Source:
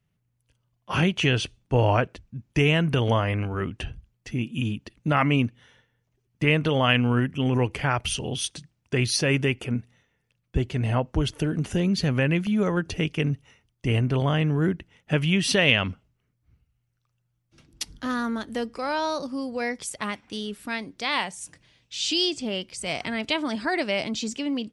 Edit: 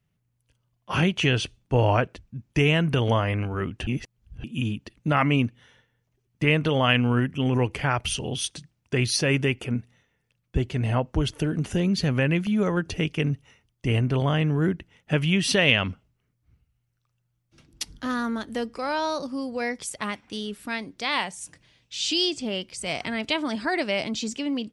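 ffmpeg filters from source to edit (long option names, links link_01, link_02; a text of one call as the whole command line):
ffmpeg -i in.wav -filter_complex "[0:a]asplit=3[link_01][link_02][link_03];[link_01]atrim=end=3.872[link_04];[link_02]atrim=start=3.868:end=4.442,asetpts=PTS-STARTPTS,areverse[link_05];[link_03]atrim=start=4.438[link_06];[link_04][link_05]acrossfade=duration=0.004:curve1=hsin:curve2=hsin[link_07];[link_07][link_06]acrossfade=duration=0.004:curve1=hsin:curve2=hsin" out.wav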